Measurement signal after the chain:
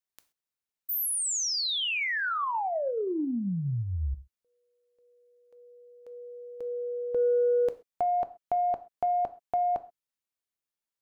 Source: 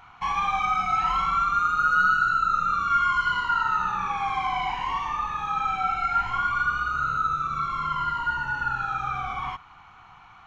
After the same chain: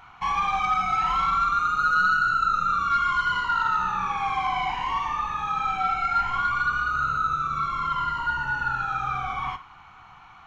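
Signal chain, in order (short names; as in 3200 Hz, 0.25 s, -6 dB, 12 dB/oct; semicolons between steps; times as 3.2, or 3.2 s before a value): non-linear reverb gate 0.15 s falling, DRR 11.5 dB; soft clip -14.5 dBFS; gain +1 dB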